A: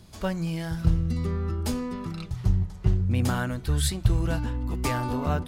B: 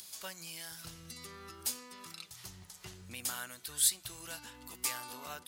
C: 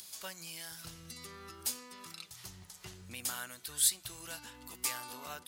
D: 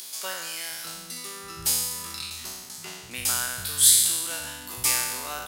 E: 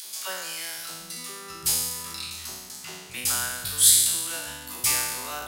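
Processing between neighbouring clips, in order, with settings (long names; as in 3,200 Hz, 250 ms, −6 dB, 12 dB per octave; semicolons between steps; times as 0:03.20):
first difference; upward compression, threshold −45 dBFS; level +3 dB
no processing that can be heard
peak hold with a decay on every bin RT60 1.27 s; multiband delay without the direct sound highs, lows 720 ms, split 200 Hz; level +8 dB
all-pass dispersion lows, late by 64 ms, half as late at 570 Hz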